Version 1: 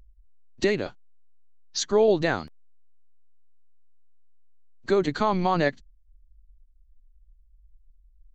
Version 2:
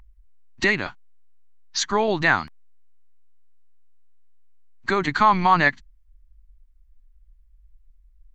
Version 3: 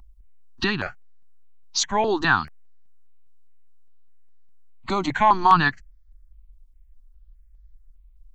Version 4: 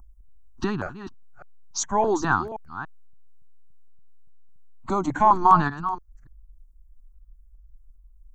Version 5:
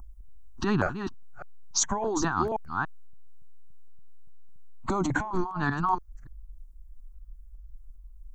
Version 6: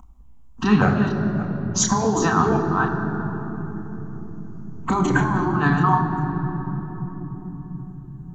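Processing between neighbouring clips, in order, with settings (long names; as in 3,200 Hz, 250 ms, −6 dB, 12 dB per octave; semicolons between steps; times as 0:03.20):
octave-band graphic EQ 500/1,000/2,000 Hz −11/+9/+8 dB; level +2.5 dB
step-sequenced phaser 4.9 Hz 460–2,700 Hz; level +3 dB
delay that plays each chunk backwards 285 ms, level −12 dB; flat-topped bell 2,900 Hz −14.5 dB
compressor whose output falls as the input rises −27 dBFS, ratio −1
convolution reverb RT60 4.1 s, pre-delay 3 ms, DRR 1 dB; level −1 dB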